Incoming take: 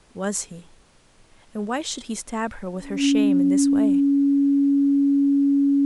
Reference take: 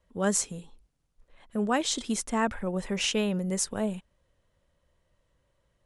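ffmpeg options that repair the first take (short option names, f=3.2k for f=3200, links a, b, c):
-af "bandreject=f=280:w=30,agate=range=-21dB:threshold=-46dB"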